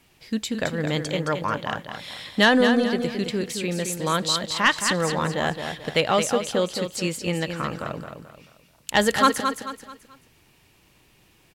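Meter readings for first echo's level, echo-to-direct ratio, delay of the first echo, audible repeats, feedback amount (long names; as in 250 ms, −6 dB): −7.0 dB, −6.5 dB, 218 ms, 4, 36%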